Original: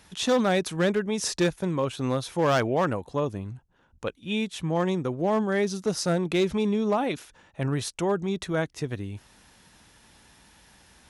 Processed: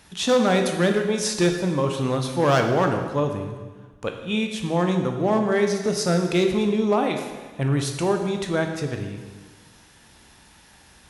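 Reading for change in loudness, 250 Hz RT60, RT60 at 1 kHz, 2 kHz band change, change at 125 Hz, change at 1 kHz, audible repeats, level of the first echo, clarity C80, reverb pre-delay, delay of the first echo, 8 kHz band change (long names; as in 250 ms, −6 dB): +4.0 dB, 1.5 s, 1.4 s, +4.0 dB, +5.0 dB, +4.0 dB, no echo audible, no echo audible, 7.5 dB, 7 ms, no echo audible, +4.0 dB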